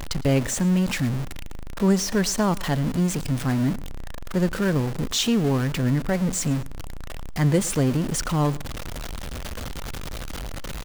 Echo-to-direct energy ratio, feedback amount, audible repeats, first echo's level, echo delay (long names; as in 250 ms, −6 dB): −21.5 dB, 25%, 2, −22.0 dB, 110 ms